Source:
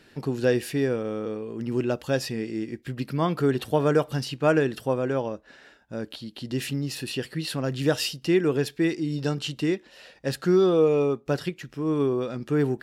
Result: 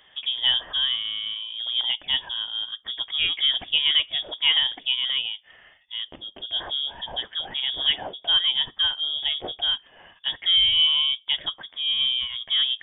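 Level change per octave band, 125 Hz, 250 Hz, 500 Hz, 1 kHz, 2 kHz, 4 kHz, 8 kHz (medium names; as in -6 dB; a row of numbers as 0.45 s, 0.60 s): under -20 dB, -27.0 dB, -22.5 dB, -6.5 dB, +2.5 dB, +19.0 dB, under -40 dB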